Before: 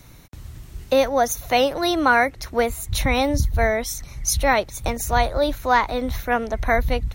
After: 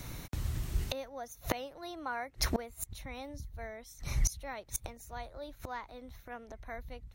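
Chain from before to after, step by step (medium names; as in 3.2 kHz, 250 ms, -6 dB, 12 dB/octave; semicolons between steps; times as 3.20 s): inverted gate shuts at -20 dBFS, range -27 dB; 1.68–2.27 s: dynamic bell 870 Hz, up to +5 dB, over -57 dBFS, Q 1.3; trim +3 dB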